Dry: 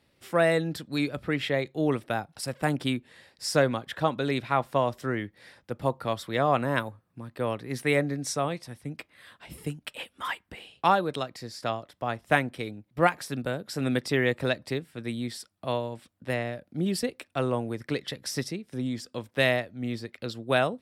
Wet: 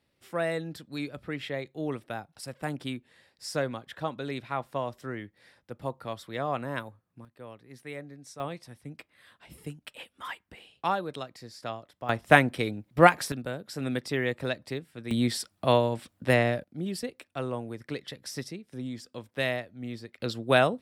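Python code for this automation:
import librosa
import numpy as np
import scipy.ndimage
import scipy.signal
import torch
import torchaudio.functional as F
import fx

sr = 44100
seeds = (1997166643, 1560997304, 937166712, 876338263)

y = fx.gain(x, sr, db=fx.steps((0.0, -7.0), (7.25, -16.0), (8.4, -6.0), (12.09, 5.0), (13.32, -4.0), (15.11, 7.0), (16.64, -5.5), (20.2, 2.5)))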